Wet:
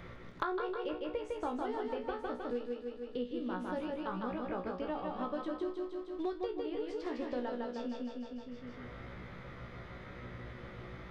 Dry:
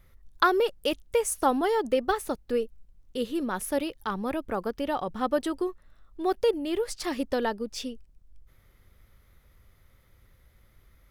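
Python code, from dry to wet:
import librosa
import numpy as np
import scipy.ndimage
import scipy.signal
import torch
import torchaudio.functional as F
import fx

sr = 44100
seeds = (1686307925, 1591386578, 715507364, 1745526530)

p1 = fx.peak_eq(x, sr, hz=4100.0, db=4.5, octaves=1.8)
p2 = fx.comb_fb(p1, sr, f0_hz=61.0, decay_s=0.21, harmonics='all', damping=0.0, mix_pct=100)
p3 = fx.quant_float(p2, sr, bits=2)
p4 = p2 + (p3 * librosa.db_to_amplitude(-6.0))
p5 = fx.spacing_loss(p4, sr, db_at_10k=32)
p6 = p5 + fx.echo_feedback(p5, sr, ms=155, feedback_pct=49, wet_db=-3.5, dry=0)
p7 = fx.band_squash(p6, sr, depth_pct=100)
y = p7 * librosa.db_to_amplitude(-7.5)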